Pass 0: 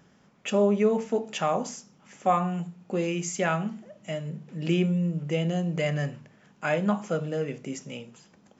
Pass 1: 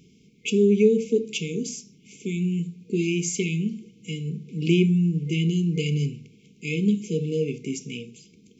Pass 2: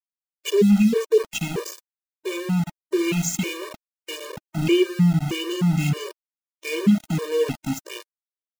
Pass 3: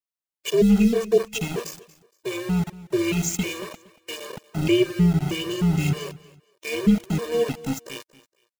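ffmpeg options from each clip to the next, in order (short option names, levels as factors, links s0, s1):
-af "afftfilt=real='re*(1-between(b*sr/4096,480,2100))':imag='im*(1-between(b*sr/4096,480,2100))':win_size=4096:overlap=0.75,volume=1.78"
-af "aeval=exprs='val(0)*gte(abs(val(0)),0.0355)':c=same,afftfilt=real='re*gt(sin(2*PI*1.6*pts/sr)*(1-2*mod(floor(b*sr/1024/310),2)),0)':imag='im*gt(sin(2*PI*1.6*pts/sr)*(1-2*mod(floor(b*sr/1024/310),2)),0)':win_size=1024:overlap=0.75,volume=1.88"
-af "aecho=1:1:233|466:0.106|0.0297,tremolo=f=240:d=0.4,volume=1.12"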